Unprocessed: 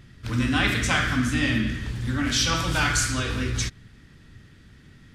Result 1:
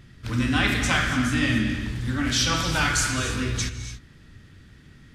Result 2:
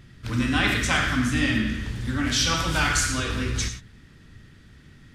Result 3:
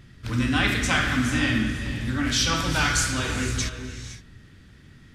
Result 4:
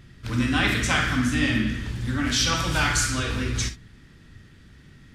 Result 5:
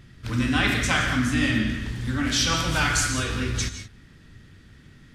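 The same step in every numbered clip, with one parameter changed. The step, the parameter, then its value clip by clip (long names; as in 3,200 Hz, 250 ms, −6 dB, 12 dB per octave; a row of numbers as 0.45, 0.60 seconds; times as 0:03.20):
reverb whose tail is shaped and stops, gate: 310, 130, 540, 80, 200 milliseconds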